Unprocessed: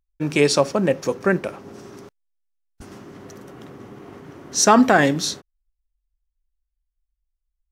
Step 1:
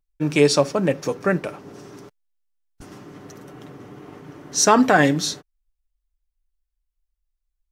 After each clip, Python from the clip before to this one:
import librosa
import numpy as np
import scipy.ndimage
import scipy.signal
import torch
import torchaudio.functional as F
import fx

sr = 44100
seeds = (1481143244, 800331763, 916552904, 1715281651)

y = x + 0.4 * np.pad(x, (int(6.7 * sr / 1000.0), 0))[:len(x)]
y = F.gain(torch.from_numpy(y), -1.0).numpy()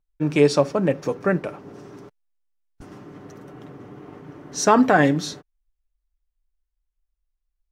y = fx.high_shelf(x, sr, hz=3000.0, db=-9.5)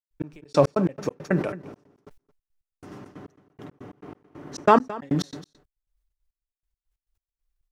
y = fx.step_gate(x, sr, bpm=138, pattern='.x...x.x.x..xx', floor_db=-60.0, edge_ms=4.5)
y = y + 10.0 ** (-19.0 / 20.0) * np.pad(y, (int(220 * sr / 1000.0), 0))[:len(y)]
y = fx.sustainer(y, sr, db_per_s=110.0)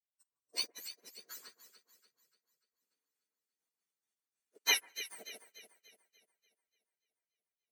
y = fx.octave_mirror(x, sr, pivot_hz=1600.0)
y = fx.echo_alternate(y, sr, ms=146, hz=1800.0, feedback_pct=85, wet_db=-3.5)
y = fx.upward_expand(y, sr, threshold_db=-45.0, expansion=2.5)
y = F.gain(torch.from_numpy(y), -6.0).numpy()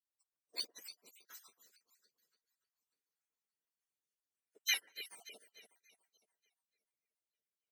y = fx.spec_dropout(x, sr, seeds[0], share_pct=36)
y = F.gain(torch.from_numpy(y), -4.0).numpy()